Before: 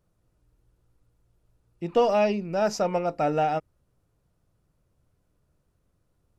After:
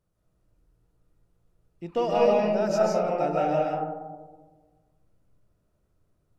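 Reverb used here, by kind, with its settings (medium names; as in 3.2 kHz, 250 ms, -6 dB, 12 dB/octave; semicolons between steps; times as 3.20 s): algorithmic reverb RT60 1.4 s, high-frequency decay 0.25×, pre-delay 110 ms, DRR -3 dB; trim -5.5 dB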